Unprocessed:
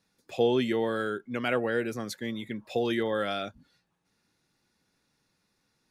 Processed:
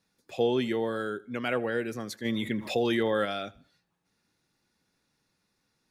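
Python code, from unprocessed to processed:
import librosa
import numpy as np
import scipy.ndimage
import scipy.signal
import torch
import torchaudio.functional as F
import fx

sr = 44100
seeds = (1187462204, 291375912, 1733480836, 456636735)

y = fx.peak_eq(x, sr, hz=2300.0, db=fx.line((0.77, -13.0), (1.24, -6.5)), octaves=0.43, at=(0.77, 1.24), fade=0.02)
y = fx.echo_feedback(y, sr, ms=79, feedback_pct=37, wet_db=-22.0)
y = fx.env_flatten(y, sr, amount_pct=50, at=(2.24, 3.24), fade=0.02)
y = y * 10.0 ** (-1.5 / 20.0)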